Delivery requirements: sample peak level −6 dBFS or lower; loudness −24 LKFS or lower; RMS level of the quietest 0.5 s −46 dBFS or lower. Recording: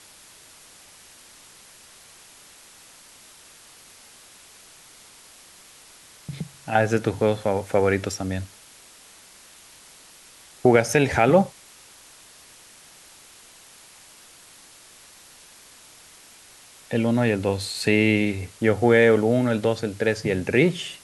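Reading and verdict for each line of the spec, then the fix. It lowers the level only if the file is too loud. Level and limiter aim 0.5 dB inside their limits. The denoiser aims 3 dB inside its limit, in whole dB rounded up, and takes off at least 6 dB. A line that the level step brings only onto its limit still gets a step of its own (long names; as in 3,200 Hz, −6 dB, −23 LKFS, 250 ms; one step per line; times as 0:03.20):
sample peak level −3.5 dBFS: out of spec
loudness −21.5 LKFS: out of spec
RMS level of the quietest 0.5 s −49 dBFS: in spec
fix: level −3 dB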